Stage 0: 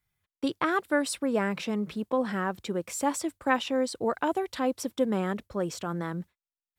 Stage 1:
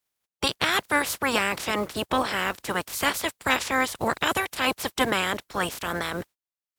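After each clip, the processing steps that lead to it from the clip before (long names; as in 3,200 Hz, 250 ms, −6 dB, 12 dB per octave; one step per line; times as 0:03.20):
ceiling on every frequency bin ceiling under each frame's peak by 29 dB
leveller curve on the samples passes 1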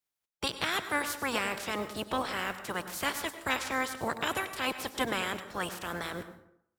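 dense smooth reverb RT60 0.7 s, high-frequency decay 0.6×, pre-delay 85 ms, DRR 10 dB
level −7.5 dB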